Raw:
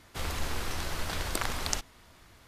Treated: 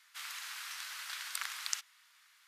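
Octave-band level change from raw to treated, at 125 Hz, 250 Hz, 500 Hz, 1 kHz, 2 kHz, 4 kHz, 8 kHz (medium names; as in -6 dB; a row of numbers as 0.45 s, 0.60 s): under -40 dB, under -40 dB, under -30 dB, -11.0 dB, -4.5 dB, -4.0 dB, -4.0 dB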